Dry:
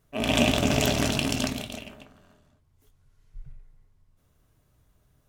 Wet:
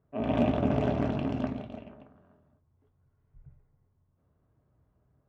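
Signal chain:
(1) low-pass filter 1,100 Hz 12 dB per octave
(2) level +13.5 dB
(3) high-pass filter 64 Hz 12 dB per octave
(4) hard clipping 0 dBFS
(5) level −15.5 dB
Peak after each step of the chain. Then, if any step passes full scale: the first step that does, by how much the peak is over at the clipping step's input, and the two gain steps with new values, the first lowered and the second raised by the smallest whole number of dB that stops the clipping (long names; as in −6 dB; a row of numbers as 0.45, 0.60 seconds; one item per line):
−9.5, +4.0, +3.5, 0.0, −15.5 dBFS
step 2, 3.5 dB
step 2 +9.5 dB, step 5 −11.5 dB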